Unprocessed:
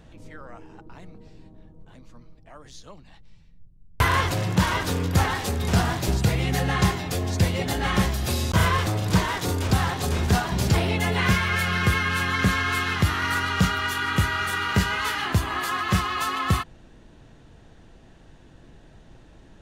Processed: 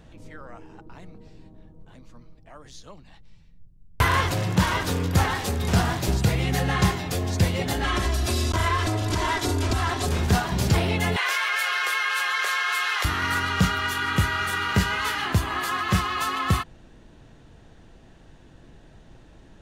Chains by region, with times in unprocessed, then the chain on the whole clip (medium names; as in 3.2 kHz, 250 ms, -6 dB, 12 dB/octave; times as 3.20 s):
7.84–10.07 s: low-pass 11 kHz + compression 4:1, threshold -21 dBFS + comb 3 ms, depth 81%
11.16–13.05 s: Bessel high-pass 820 Hz, order 8 + level flattener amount 70%
whole clip: none